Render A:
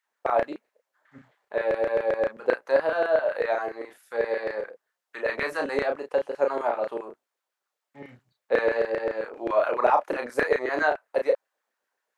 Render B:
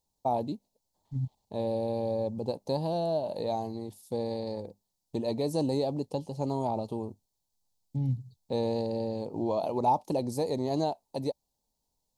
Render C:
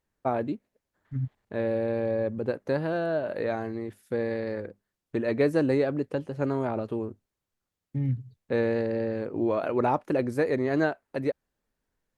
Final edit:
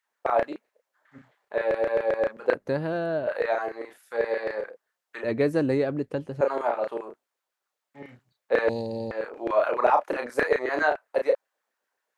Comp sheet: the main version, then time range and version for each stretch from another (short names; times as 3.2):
A
2.54–3.27 from C
5.24–6.41 from C
8.69–9.11 from B